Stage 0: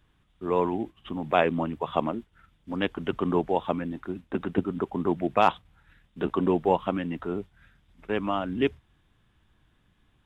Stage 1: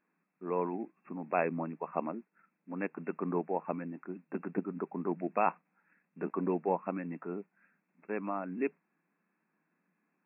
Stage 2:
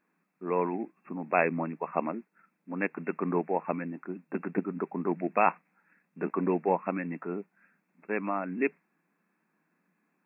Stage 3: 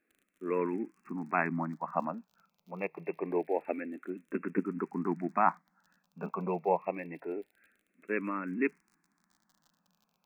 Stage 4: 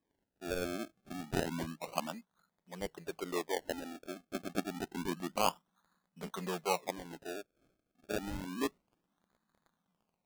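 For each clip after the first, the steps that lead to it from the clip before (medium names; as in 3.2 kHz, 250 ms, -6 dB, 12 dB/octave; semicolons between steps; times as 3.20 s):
FFT band-pass 160–2700 Hz; trim -8 dB
dynamic bell 2.1 kHz, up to +7 dB, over -56 dBFS, Q 1.7; trim +4 dB
crackle 43 per s -47 dBFS; barber-pole phaser -0.26 Hz
decimation with a swept rate 31×, swing 100% 0.29 Hz; trim -5 dB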